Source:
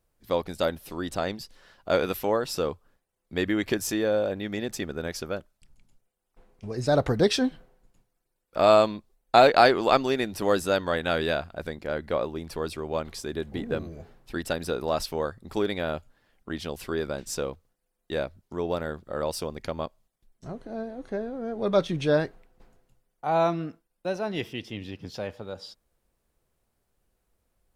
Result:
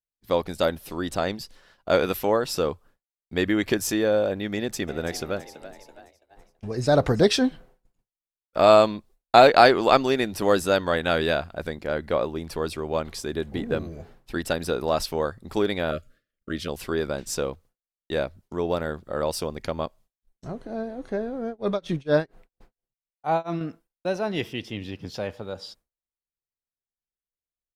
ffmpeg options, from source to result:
-filter_complex "[0:a]asplit=3[s0][s1][s2];[s0]afade=t=out:st=4.87:d=0.02[s3];[s1]asplit=6[s4][s5][s6][s7][s8][s9];[s5]adelay=331,afreqshift=67,volume=0.188[s10];[s6]adelay=662,afreqshift=134,volume=0.0977[s11];[s7]adelay=993,afreqshift=201,volume=0.0507[s12];[s8]adelay=1324,afreqshift=268,volume=0.0266[s13];[s9]adelay=1655,afreqshift=335,volume=0.0138[s14];[s4][s10][s11][s12][s13][s14]amix=inputs=6:normalize=0,afade=t=in:st=4.87:d=0.02,afade=t=out:st=7.25:d=0.02[s15];[s2]afade=t=in:st=7.25:d=0.02[s16];[s3][s15][s16]amix=inputs=3:normalize=0,asettb=1/sr,asplit=3[s17][s18][s19];[s17]atrim=end=15.914[s20];[s18]atrim=start=15.91:end=16.68,asetpts=PTS-STARTPTS,afade=t=in:d=0.004:c=qsin,afade=t=out:st=0.766:d=0.004:c=qsin,asuperstop=centerf=860:order=20:qfactor=1.8[s21];[s19]atrim=start=16.676[s22];[s20][s21]acrossfade=d=0.004:c1=hsin:c2=qsin[s23];[s23][s22]acrossfade=d=0.004:c1=qsin:c2=hsin,asettb=1/sr,asplit=3[s24][s25][s26];[s24]atrim=end=21.464[s27];[s25]atrim=start=21.46:end=23.61,asetpts=PTS-STARTPTS,afade=t=in:d=0.004:c=qsin,afade=t=out:st=2.146:d=0.004:c=qsin,tremolo=f=4.3:d=0.98[s28];[s26]atrim=start=23.606[s29];[s27][s28]acrossfade=d=0.004:c1=hsin:c2=qsin[s30];[s30][s29]acrossfade=d=0.004:c1=qsin:c2=hsin,agate=range=0.0224:threshold=0.00316:ratio=3:detection=peak,volume=1.41"

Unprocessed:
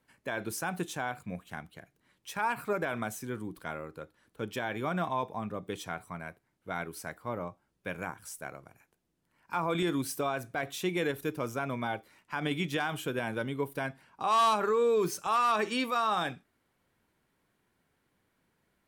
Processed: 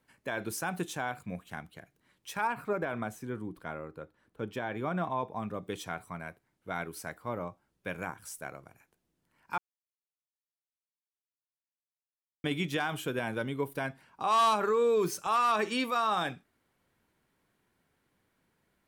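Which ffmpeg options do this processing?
-filter_complex "[0:a]asettb=1/sr,asplit=3[s0][s1][s2];[s0]atrim=end=2.474[s3];[s1]atrim=start=2.47:end=5.36,asetpts=PTS-STARTPTS,afade=t=in:d=0.004:c=qsin,afade=t=out:st=2.886:d=0.004:c=qsin,highshelf=f=2700:g=-10[s4];[s2]atrim=start=5.356[s5];[s3][s4]acrossfade=d=0.004:c1=hsin:c2=qsin[s6];[s6][s5]acrossfade=d=0.004:c1=qsin:c2=hsin,asplit=3[s7][s8][s9];[s7]atrim=end=9.58,asetpts=PTS-STARTPTS,afade=t=out:st=9.576:d=0.004:c=hsin[s10];[s8]atrim=start=9.58:end=12.44,asetpts=PTS-STARTPTS,volume=0[s11];[s9]atrim=start=12.44,asetpts=PTS-STARTPTS,afade=t=in:d=0.004:c=hsin[s12];[s10][s11][s12]concat=n=3:v=0:a=1"

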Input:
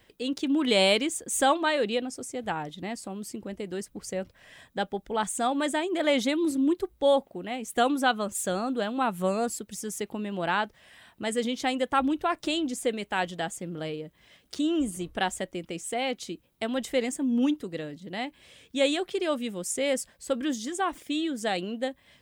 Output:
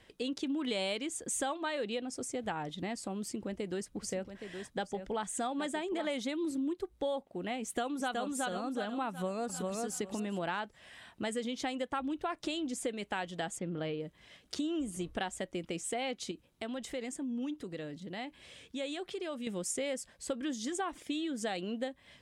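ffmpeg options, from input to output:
-filter_complex "[0:a]asplit=3[s0][s1][s2];[s0]afade=t=out:st=4.02:d=0.02[s3];[s1]aecho=1:1:819:0.316,afade=t=in:st=4.02:d=0.02,afade=t=out:st=6.16:d=0.02[s4];[s2]afade=t=in:st=6.16:d=0.02[s5];[s3][s4][s5]amix=inputs=3:normalize=0,asplit=2[s6][s7];[s7]afade=t=in:st=7.62:d=0.01,afade=t=out:st=8.2:d=0.01,aecho=0:1:370|740|1110|1480|1850:0.841395|0.294488|0.103071|0.0360748|0.0126262[s8];[s6][s8]amix=inputs=2:normalize=0,asplit=2[s9][s10];[s10]afade=t=in:st=9.09:d=0.01,afade=t=out:st=9.79:d=0.01,aecho=0:1:400|800|1200:0.595662|0.0893493|0.0134024[s11];[s9][s11]amix=inputs=2:normalize=0,asplit=3[s12][s13][s14];[s12]afade=t=out:st=13.58:d=0.02[s15];[s13]lowpass=3600,afade=t=in:st=13.58:d=0.02,afade=t=out:st=13.99:d=0.02[s16];[s14]afade=t=in:st=13.99:d=0.02[s17];[s15][s16][s17]amix=inputs=3:normalize=0,asettb=1/sr,asplit=3[s18][s19][s20];[s18]atrim=end=16.314[s21];[s19]atrim=start=16.31:end=19.47,asetpts=PTS-STARTPTS,afade=t=in:d=0.004:c=qsin,afade=t=out:st=3.156:d=0.004:c=qsin,acompressor=threshold=0.00794:ratio=2:attack=3.2:release=140:knee=1:detection=peak[s22];[s20]atrim=start=19.466[s23];[s21][s22]acrossfade=d=0.004:c1=hsin:c2=qsin[s24];[s24][s23]acrossfade=d=0.004:c1=qsin:c2=hsin,lowpass=10000,acompressor=threshold=0.0224:ratio=5"

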